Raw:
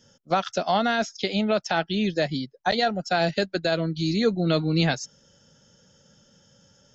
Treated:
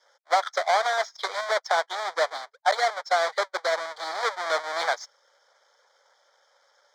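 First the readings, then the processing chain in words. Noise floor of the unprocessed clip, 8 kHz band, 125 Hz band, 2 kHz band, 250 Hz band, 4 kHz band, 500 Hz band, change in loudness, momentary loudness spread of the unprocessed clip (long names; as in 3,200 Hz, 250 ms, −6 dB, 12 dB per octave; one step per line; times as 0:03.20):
−60 dBFS, can't be measured, below −40 dB, +1.5 dB, −29.5 dB, −2.5 dB, −2.0 dB, −1.5 dB, 4 LU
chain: each half-wave held at its own peak
inverse Chebyshev high-pass filter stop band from 240 Hz, stop band 50 dB
harmonic and percussive parts rebalanced percussive +4 dB
in parallel at −8 dB: floating-point word with a short mantissa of 2 bits
on the sum: Butterworth band-reject 2,700 Hz, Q 2.7
high-frequency loss of the air 140 metres
level −5.5 dB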